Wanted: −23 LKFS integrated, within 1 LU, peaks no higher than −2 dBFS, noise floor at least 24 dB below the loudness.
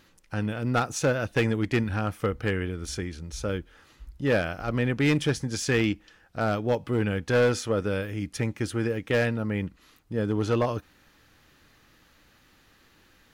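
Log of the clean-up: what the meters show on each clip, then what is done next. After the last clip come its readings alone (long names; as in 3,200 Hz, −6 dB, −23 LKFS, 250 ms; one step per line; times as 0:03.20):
share of clipped samples 0.7%; peaks flattened at −17.0 dBFS; integrated loudness −27.5 LKFS; sample peak −17.0 dBFS; target loudness −23.0 LKFS
→ clipped peaks rebuilt −17 dBFS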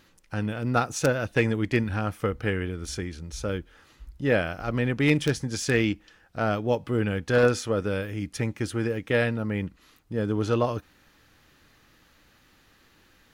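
share of clipped samples 0.0%; integrated loudness −27.0 LKFS; sample peak −8.0 dBFS; target loudness −23.0 LKFS
→ level +4 dB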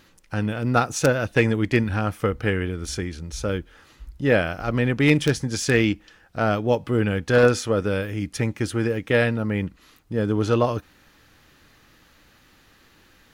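integrated loudness −23.0 LKFS; sample peak −4.0 dBFS; background noise floor −56 dBFS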